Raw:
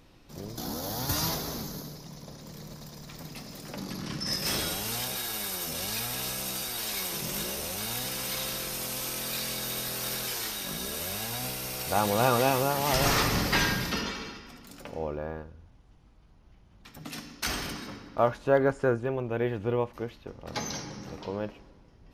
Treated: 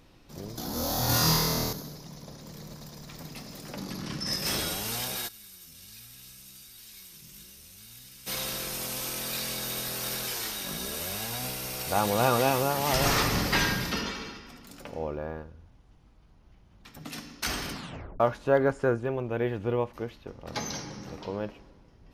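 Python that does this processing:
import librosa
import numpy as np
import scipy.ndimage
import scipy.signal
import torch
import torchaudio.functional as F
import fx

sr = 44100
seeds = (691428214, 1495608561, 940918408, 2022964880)

y = fx.room_flutter(x, sr, wall_m=4.3, rt60_s=1.2, at=(0.71, 1.73))
y = fx.tone_stack(y, sr, knobs='6-0-2', at=(5.27, 8.26), fade=0.02)
y = fx.edit(y, sr, fx.tape_stop(start_s=17.72, length_s=0.48), tone=tone)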